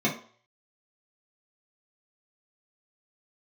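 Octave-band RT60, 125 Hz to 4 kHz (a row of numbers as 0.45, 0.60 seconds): 0.50, 0.40, 0.45, 0.50, 0.40, 0.40 seconds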